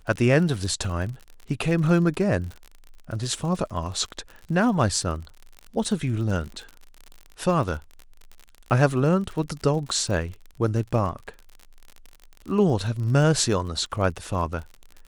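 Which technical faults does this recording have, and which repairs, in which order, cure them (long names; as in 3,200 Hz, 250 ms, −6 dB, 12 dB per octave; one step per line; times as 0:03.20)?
surface crackle 48 per second −32 dBFS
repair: click removal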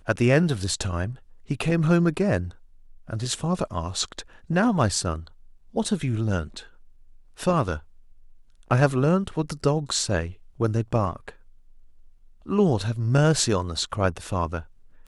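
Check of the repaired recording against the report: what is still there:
none of them is left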